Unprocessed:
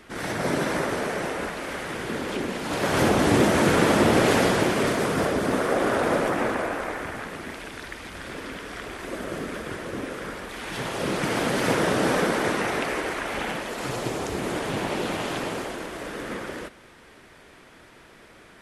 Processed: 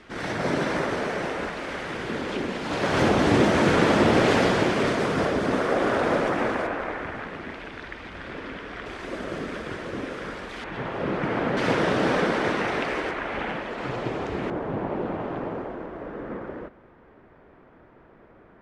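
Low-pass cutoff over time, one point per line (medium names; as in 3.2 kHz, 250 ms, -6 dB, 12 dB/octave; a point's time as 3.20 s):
5.5 kHz
from 6.67 s 3.2 kHz
from 8.86 s 5.4 kHz
from 10.64 s 2 kHz
from 11.57 s 4.4 kHz
from 13.11 s 2.7 kHz
from 14.50 s 1.1 kHz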